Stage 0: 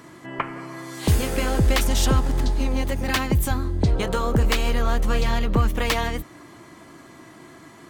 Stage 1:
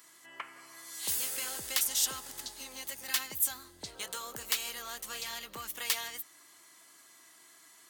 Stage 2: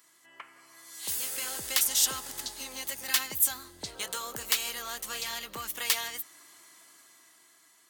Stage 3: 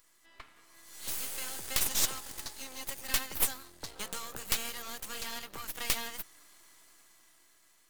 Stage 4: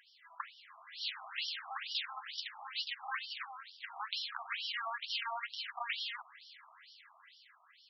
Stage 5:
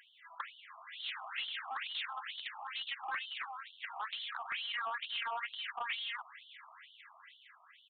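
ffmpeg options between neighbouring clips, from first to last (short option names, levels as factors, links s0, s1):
-af "aderivative,bandreject=f=2400:w=22"
-af "dynaudnorm=f=300:g=9:m=3.76,volume=0.596"
-af "aeval=exprs='max(val(0),0)':c=same"
-af "acompressor=threshold=0.0178:ratio=5,afftfilt=real='re*between(b*sr/1024,900*pow(4100/900,0.5+0.5*sin(2*PI*2.2*pts/sr))/1.41,900*pow(4100/900,0.5+0.5*sin(2*PI*2.2*pts/sr))*1.41)':imag='im*between(b*sr/1024,900*pow(4100/900,0.5+0.5*sin(2*PI*2.2*pts/sr))/1.41,900*pow(4100/900,0.5+0.5*sin(2*PI*2.2*pts/sr))*1.41)':win_size=1024:overlap=0.75,volume=3.76"
-af "asoftclip=type=tanh:threshold=0.0188,aresample=8000,aresample=44100,volume=1.5"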